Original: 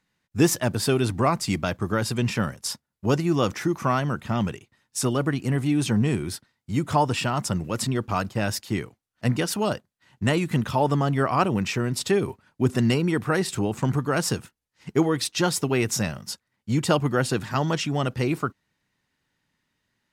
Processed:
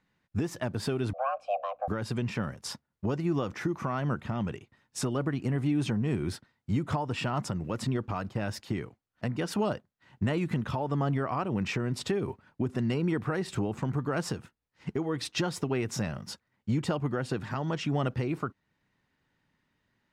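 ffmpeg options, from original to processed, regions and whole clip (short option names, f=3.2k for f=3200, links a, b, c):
-filter_complex "[0:a]asettb=1/sr,asplit=3[a][b][c];[a]atrim=end=1.134[d];[b]atrim=start=1.13:end=1.88,asetpts=PTS-STARTPTS,afade=t=in:d=0.004:c=qsin,afade=t=out:st=0.746:d=0.004:c=qsin,afreqshift=410,aeval=exprs='val(0)+0.00398*(sin(2*PI*60*n/s)+sin(2*PI*2*60*n/s)/2+sin(2*PI*3*60*n/s)/3+sin(2*PI*4*60*n/s)/4+sin(2*PI*5*60*n/s)/5)':c=same,asplit=3[e][f][g];[e]bandpass=f=730:t=q:w=8,volume=0dB[h];[f]bandpass=f=1.09k:t=q:w=8,volume=-6dB[i];[g]bandpass=f=2.44k:t=q:w=8,volume=-9dB[j];[h][i][j]amix=inputs=3:normalize=0[k];[c]atrim=start=1.876[l];[d][k]acrossfade=d=0.004:c1=hsin:c2=qsin[m];[m][l]acrossfade=d=0.004:c1=qsin:c2=hsin,lowpass=f=2.1k:p=1,acompressor=threshold=-24dB:ratio=6,alimiter=limit=-21.5dB:level=0:latency=1:release=428,volume=2dB"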